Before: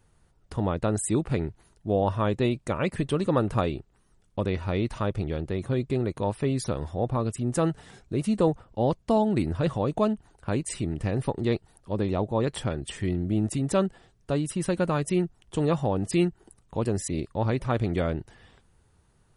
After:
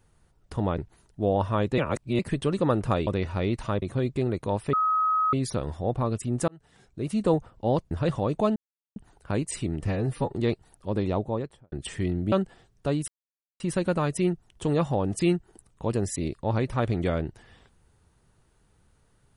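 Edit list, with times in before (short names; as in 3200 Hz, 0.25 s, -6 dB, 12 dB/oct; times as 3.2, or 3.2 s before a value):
0.78–1.45 cut
2.45–2.86 reverse
3.74–4.39 cut
5.14–5.56 cut
6.47 add tone 1270 Hz -20.5 dBFS 0.60 s
7.62–8.45 fade in
9.05–9.49 cut
10.14 insert silence 0.40 s
11.05–11.35 stretch 1.5×
12.15–12.75 studio fade out
13.35–13.76 cut
14.52 insert silence 0.52 s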